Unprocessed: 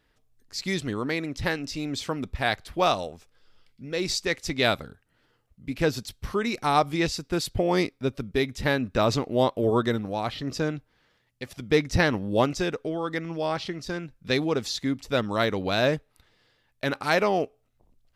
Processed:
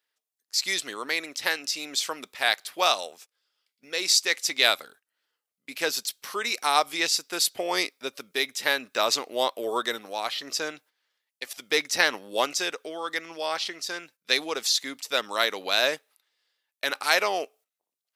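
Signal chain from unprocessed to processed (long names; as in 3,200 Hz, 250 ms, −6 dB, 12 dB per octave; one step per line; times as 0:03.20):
high-pass filter 380 Hz 12 dB per octave
noise gate −52 dBFS, range −14 dB
spectral tilt +3.5 dB per octave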